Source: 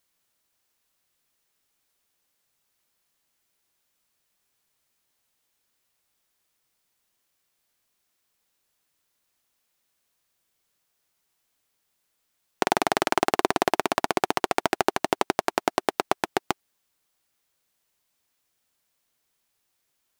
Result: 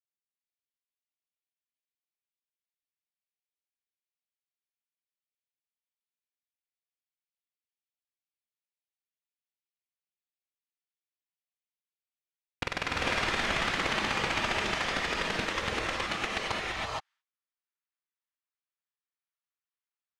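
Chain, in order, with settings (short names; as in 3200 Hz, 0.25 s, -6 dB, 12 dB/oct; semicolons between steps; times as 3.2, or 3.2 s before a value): gate -57 dBFS, range -24 dB; inverse Chebyshev high-pass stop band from 360 Hz, stop band 80 dB, from 16.5 s stop band from 180 Hz; sample leveller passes 5; sine folder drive 18 dB, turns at -6.5 dBFS; tape spacing loss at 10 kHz 32 dB; non-linear reverb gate 0.49 s rising, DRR -4.5 dB; gain -6 dB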